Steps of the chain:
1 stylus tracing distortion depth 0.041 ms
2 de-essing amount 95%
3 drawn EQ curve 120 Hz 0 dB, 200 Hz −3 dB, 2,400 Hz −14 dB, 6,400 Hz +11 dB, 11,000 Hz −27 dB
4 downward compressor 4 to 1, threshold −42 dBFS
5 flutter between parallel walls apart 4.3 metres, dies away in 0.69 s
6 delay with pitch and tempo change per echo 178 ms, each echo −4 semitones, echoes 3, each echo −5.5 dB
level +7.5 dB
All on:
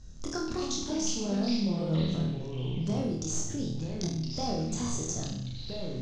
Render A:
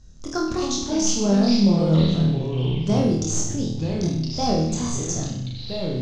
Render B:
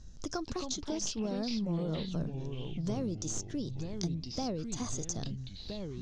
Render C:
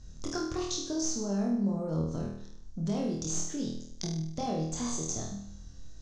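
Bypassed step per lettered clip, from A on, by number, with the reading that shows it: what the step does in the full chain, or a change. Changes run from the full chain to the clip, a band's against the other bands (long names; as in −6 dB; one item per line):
4, average gain reduction 6.0 dB
5, change in crest factor +3.5 dB
6, change in integrated loudness −1.0 LU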